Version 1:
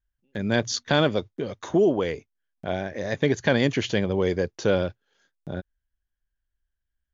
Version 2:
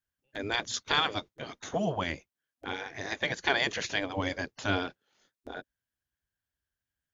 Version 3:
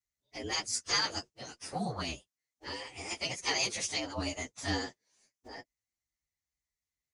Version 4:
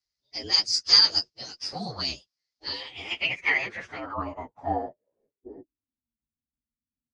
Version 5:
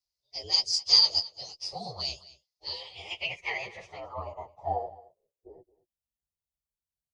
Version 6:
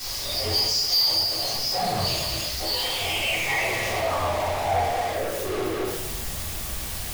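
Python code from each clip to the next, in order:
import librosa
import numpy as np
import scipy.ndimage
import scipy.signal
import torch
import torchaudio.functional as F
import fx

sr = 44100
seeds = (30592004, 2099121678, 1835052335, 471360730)

y1 = fx.spec_gate(x, sr, threshold_db=-10, keep='weak')
y1 = F.gain(torch.from_numpy(y1), 1.0).numpy()
y2 = fx.partial_stretch(y1, sr, pct=112)
y2 = fx.peak_eq(y2, sr, hz=6300.0, db=13.0, octaves=0.75)
y2 = F.gain(torch.from_numpy(y2), -2.0).numpy()
y3 = fx.filter_sweep_lowpass(y2, sr, from_hz=4900.0, to_hz=240.0, start_s=2.54, end_s=6.02, q=7.0)
y4 = fx.fixed_phaser(y3, sr, hz=640.0, stages=4)
y4 = y4 + 10.0 ** (-19.5 / 20.0) * np.pad(y4, (int(220 * sr / 1000.0), 0))[:len(y4)]
y4 = F.gain(torch.from_numpy(y4), -1.5).numpy()
y5 = y4 + 0.5 * 10.0 ** (-26.0 / 20.0) * np.sign(y4)
y5 = fx.room_shoebox(y5, sr, seeds[0], volume_m3=210.0, walls='mixed', distance_m=3.6)
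y5 = 10.0 ** (-11.0 / 20.0) * np.tanh(y5 / 10.0 ** (-11.0 / 20.0))
y5 = F.gain(torch.from_numpy(y5), -6.0).numpy()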